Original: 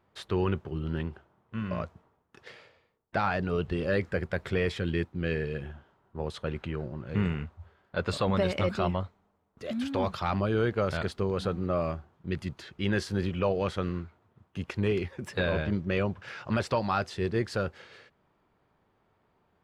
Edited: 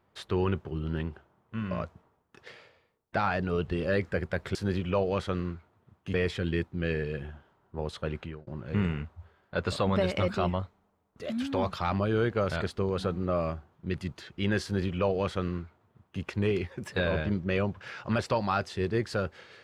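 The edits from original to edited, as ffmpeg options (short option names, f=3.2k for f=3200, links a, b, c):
-filter_complex "[0:a]asplit=4[a][b][c][d];[a]atrim=end=4.552[e];[b]atrim=start=13.038:end=14.632[f];[c]atrim=start=4.548:end=6.88,asetpts=PTS-STARTPTS,afade=t=out:st=2.022:d=0.31[g];[d]atrim=start=6.88,asetpts=PTS-STARTPTS,afade=t=in:d=0.004:c=hsin[h];[e][f]acrossfade=d=0.004:c1=hsin:c2=hsin[i];[g][h]concat=n=2:v=0:a=1[j];[i][j]acrossfade=d=0.004:c1=hsin:c2=hsin"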